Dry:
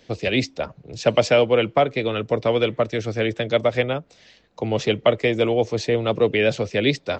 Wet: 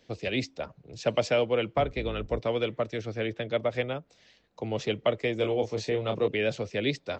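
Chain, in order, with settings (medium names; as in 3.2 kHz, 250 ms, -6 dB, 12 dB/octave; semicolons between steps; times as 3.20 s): 1.74–2.39 s: octave divider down 2 oct, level 0 dB; 3.01–3.69 s: low-pass 6.1 kHz -> 3.4 kHz 12 dB/octave; 5.37–6.28 s: doubling 28 ms -6.5 dB; trim -8.5 dB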